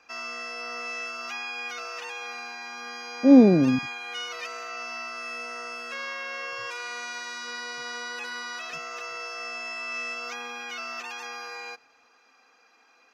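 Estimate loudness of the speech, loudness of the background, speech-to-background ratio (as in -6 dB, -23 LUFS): -18.5 LUFS, -34.0 LUFS, 15.5 dB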